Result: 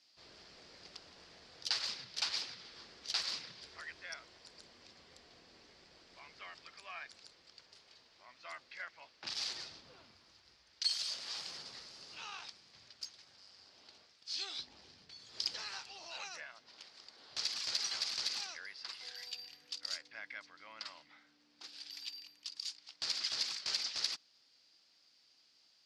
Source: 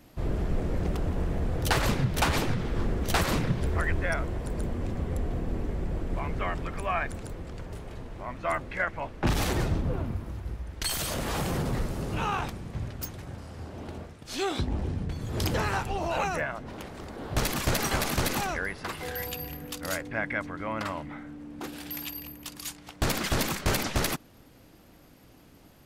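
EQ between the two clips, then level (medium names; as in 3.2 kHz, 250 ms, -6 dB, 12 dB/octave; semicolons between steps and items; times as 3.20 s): band-pass filter 4.8 kHz, Q 5; distance through air 62 m; +7.0 dB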